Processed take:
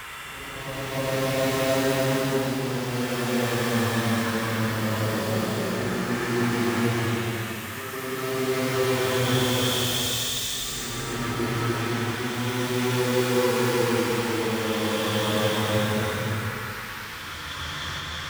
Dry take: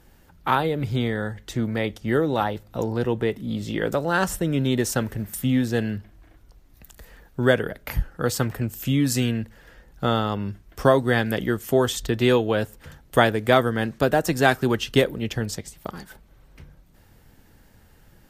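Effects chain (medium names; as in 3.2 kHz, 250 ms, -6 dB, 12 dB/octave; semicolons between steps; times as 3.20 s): square wave that keeps the level; high-pass 71 Hz; reverse; compression, threshold -24 dBFS, peak gain reduction 15.5 dB; reverse; repeats whose band climbs or falls 325 ms, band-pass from 1.6 kHz, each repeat 0.7 oct, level -1 dB; Paulstretch 8.3×, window 0.25 s, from 10.70 s; reverse echo 304 ms -3 dB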